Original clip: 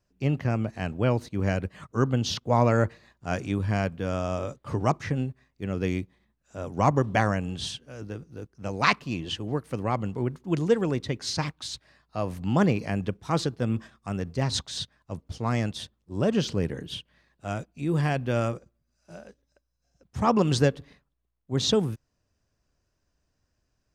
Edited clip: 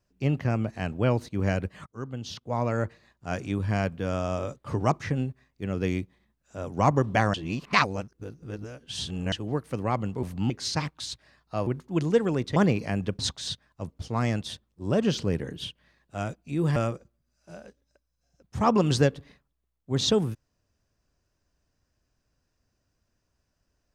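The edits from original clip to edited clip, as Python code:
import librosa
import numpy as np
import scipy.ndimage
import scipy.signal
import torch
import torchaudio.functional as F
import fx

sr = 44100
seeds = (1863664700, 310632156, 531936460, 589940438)

y = fx.edit(x, sr, fx.fade_in_from(start_s=1.86, length_s=2.01, floor_db=-15.5),
    fx.reverse_span(start_s=7.34, length_s=1.98),
    fx.swap(start_s=10.23, length_s=0.89, other_s=12.29, other_length_s=0.27),
    fx.cut(start_s=13.19, length_s=1.3),
    fx.cut(start_s=18.06, length_s=0.31), tone=tone)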